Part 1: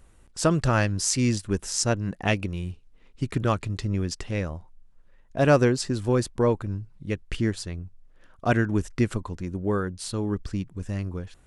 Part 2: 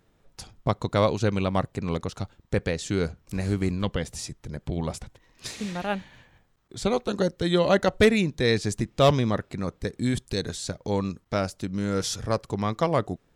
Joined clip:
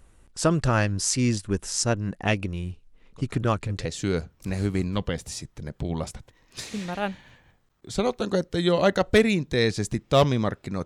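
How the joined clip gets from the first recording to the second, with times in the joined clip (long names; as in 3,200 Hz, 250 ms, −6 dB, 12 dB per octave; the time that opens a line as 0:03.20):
part 1
0:03.12: mix in part 2 from 0:01.99 0.73 s −16 dB
0:03.85: continue with part 2 from 0:02.72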